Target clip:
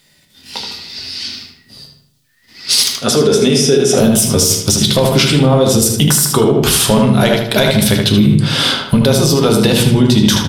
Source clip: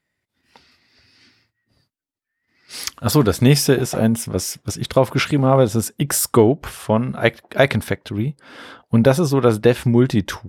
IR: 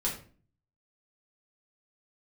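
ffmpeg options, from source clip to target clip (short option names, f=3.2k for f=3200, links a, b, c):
-filter_complex "[0:a]highshelf=f=2.6k:t=q:w=1.5:g=9.5,bandreject=f=60:t=h:w=6,bandreject=f=120:t=h:w=6,bandreject=f=180:t=h:w=6,bandreject=f=240:t=h:w=6,bandreject=f=300:t=h:w=6,bandreject=f=360:t=h:w=6,bandreject=f=420:t=h:w=6,bandreject=f=480:t=h:w=6,acompressor=threshold=-27dB:ratio=6,asoftclip=type=tanh:threshold=-18dB,asettb=1/sr,asplit=3[a][b][c];[a]atrim=end=2.934[d];[b]atrim=start=2.93:end=3.98,asetpts=PTS-STARTPTS,afade=t=in:d=0.004:c=qsin,afade=t=out:st=1.046:d=0.004:c=qsin,highpass=220,equalizer=f=420:t=q:w=4:g=6,equalizer=f=960:t=q:w=4:g=-7,equalizer=f=3k:t=q:w=4:g=-3,equalizer=f=4.4k:t=q:w=4:g=-10,equalizer=f=7.8k:t=q:w=4:g=-7,lowpass=f=9.2k:w=0.5412,lowpass=f=9.2k:w=1.3066[e];[c]atrim=start=3.976[f];[d][e]acrossfade=d=0.004:c1=hsin:c2=qsin[g];[g][f]acrossfade=d=0.004:c1=qsin:c2=hsin,asplit=2[h][i];[i]adelay=77,lowpass=f=4k:p=1,volume=-4.5dB,asplit=2[j][k];[k]adelay=77,lowpass=f=4k:p=1,volume=0.47,asplit=2[l][m];[m]adelay=77,lowpass=f=4k:p=1,volume=0.47,asplit=2[n][o];[o]adelay=77,lowpass=f=4k:p=1,volume=0.47,asplit=2[p][q];[q]adelay=77,lowpass=f=4k:p=1,volume=0.47,asplit=2[r][s];[s]adelay=77,lowpass=f=4k:p=1,volume=0.47[t];[h][j][l][n][p][r][t]amix=inputs=7:normalize=0,asplit=2[u][v];[1:a]atrim=start_sample=2205[w];[v][w]afir=irnorm=-1:irlink=0,volume=-6dB[x];[u][x]amix=inputs=2:normalize=0,alimiter=level_in=16.5dB:limit=-1dB:release=50:level=0:latency=1,volume=-1dB"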